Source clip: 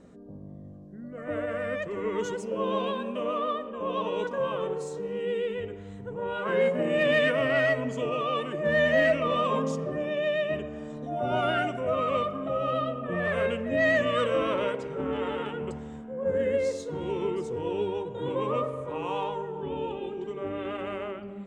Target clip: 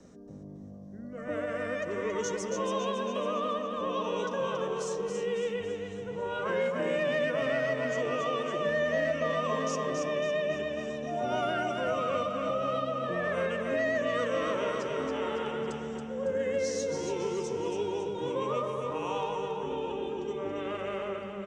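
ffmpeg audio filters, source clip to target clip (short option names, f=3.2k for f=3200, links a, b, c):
-filter_complex "[0:a]asplit=2[a][b];[b]aecho=0:1:277|554|831|1108|1385|1662:0.501|0.251|0.125|0.0626|0.0313|0.0157[c];[a][c]amix=inputs=2:normalize=0,acrossover=split=130|290|700|1600[d][e][f][g][h];[d]acompressor=threshold=-53dB:ratio=4[i];[e]acompressor=threshold=-40dB:ratio=4[j];[f]acompressor=threshold=-30dB:ratio=4[k];[g]acompressor=threshold=-33dB:ratio=4[l];[h]acompressor=threshold=-40dB:ratio=4[m];[i][j][k][l][m]amix=inputs=5:normalize=0,equalizer=f=5.8k:w=2.5:g=14,volume=-1.5dB"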